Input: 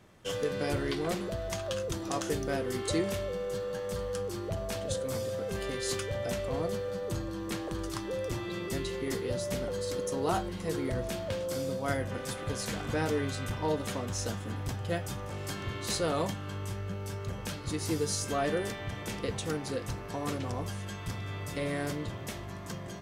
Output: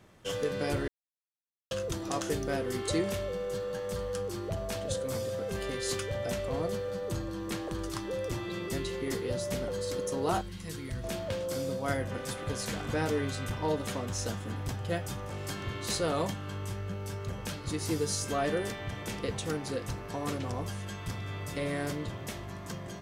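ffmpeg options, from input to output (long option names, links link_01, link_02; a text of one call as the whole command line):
ffmpeg -i in.wav -filter_complex "[0:a]asettb=1/sr,asplit=3[link_01][link_02][link_03];[link_01]atrim=end=10.414[link_04];[link_02]atrim=start=10.41:end=11.04,asetpts=PTS-STARTPTS,afade=type=in:duration=0.004:curve=qsin,afade=type=out:start_time=0.626:duration=0.004:curve=qsin,equalizer=frequency=560:width_type=o:width=2.2:gain=-14.5[link_05];[link_03]atrim=start=11.036[link_06];[link_04][link_05]acrossfade=duration=0.004:curve1=hsin:curve2=qsin[link_07];[link_07][link_06]acrossfade=duration=0.004:curve1=qsin:curve2=hsin,asplit=3[link_08][link_09][link_10];[link_08]atrim=end=0.88,asetpts=PTS-STARTPTS,afade=type=out:start_time=0.876:duration=0.004:curve=hsin[link_11];[link_09]atrim=start=0.88:end=1.71,asetpts=PTS-STARTPTS,volume=0[link_12];[link_10]atrim=start=1.71,asetpts=PTS-STARTPTS,afade=type=in:duration=0.004:curve=hsin[link_13];[link_11][link_12][link_13]concat=n=3:v=0:a=1" out.wav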